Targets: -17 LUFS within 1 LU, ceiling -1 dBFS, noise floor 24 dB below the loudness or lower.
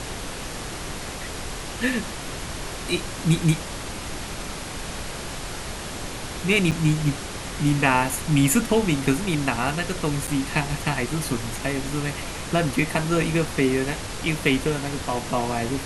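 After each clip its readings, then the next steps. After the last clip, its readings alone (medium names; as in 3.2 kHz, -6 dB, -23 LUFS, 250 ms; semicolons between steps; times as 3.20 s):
dropouts 2; longest dropout 7.0 ms; noise floor -33 dBFS; noise floor target -49 dBFS; loudness -25.0 LUFS; peak level -6.0 dBFS; loudness target -17.0 LUFS
-> interpolate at 6.71/10.27 s, 7 ms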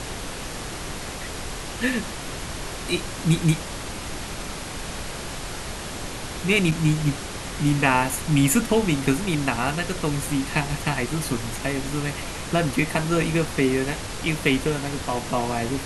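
dropouts 0; noise floor -33 dBFS; noise floor target -49 dBFS
-> noise print and reduce 16 dB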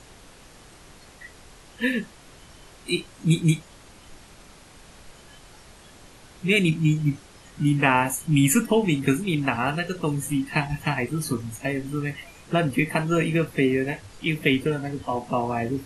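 noise floor -49 dBFS; loudness -24.0 LUFS; peak level -6.0 dBFS; loudness target -17.0 LUFS
-> trim +7 dB; peak limiter -1 dBFS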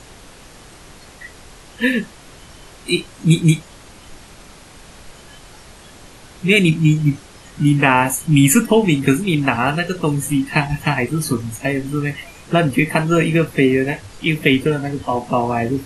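loudness -17.5 LUFS; peak level -1.0 dBFS; noise floor -42 dBFS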